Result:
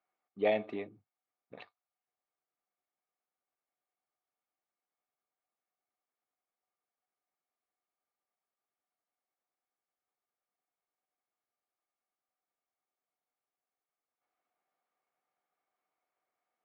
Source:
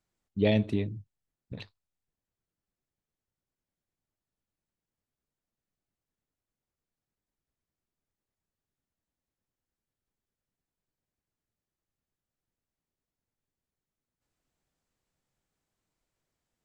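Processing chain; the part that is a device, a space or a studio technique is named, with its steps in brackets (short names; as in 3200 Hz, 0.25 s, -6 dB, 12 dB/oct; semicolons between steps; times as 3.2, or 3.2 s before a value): tin-can telephone (BPF 500–2000 Hz; small resonant body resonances 740/1200/2200 Hz, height 11 dB)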